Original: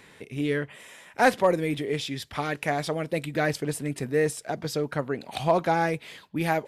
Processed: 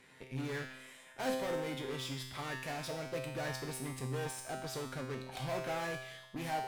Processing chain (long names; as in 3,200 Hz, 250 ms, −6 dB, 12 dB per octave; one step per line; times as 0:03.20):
tape wow and flutter 28 cents
harmonic generator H 4 −15 dB, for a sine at −26 dBFS
tuned comb filter 130 Hz, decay 0.97 s, harmonics all, mix 90%
level +6 dB